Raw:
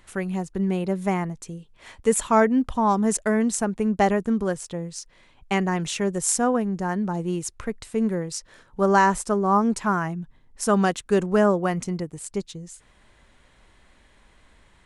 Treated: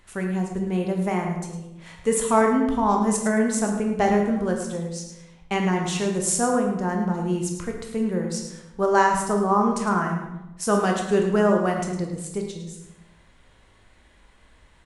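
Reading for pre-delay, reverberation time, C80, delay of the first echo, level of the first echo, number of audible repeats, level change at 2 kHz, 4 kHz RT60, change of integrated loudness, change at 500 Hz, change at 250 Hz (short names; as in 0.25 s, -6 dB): 13 ms, 0.95 s, 6.0 dB, 0.107 s, -10.0 dB, 1, 0.0 dB, 0.65 s, 0.0 dB, +1.0 dB, 0.0 dB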